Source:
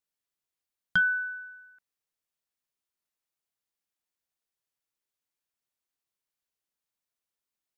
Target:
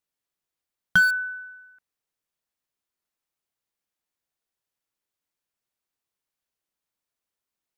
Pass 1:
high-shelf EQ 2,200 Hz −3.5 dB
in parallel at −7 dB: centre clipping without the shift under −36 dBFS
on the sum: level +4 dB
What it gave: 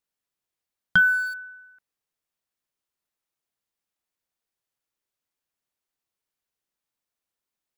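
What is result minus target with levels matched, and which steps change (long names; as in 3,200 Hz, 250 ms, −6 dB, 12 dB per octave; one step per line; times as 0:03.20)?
centre clipping without the shift: distortion −12 dB
change: centre clipping without the shift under −25 dBFS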